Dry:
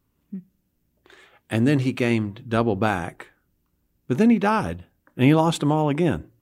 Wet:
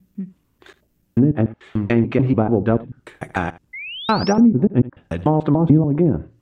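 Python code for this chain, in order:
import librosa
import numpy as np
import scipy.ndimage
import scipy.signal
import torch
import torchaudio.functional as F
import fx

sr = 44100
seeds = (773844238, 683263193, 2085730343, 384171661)

p1 = fx.block_reorder(x, sr, ms=146.0, group=4)
p2 = fx.env_lowpass_down(p1, sr, base_hz=310.0, full_db=-14.5)
p3 = fx.spec_paint(p2, sr, seeds[0], shape='rise', start_s=3.73, length_s=0.6, low_hz=2000.0, high_hz=5900.0, level_db=-37.0)
p4 = p3 + fx.echo_single(p3, sr, ms=77, db=-18.5, dry=0)
y = F.gain(torch.from_numpy(p4), 5.5).numpy()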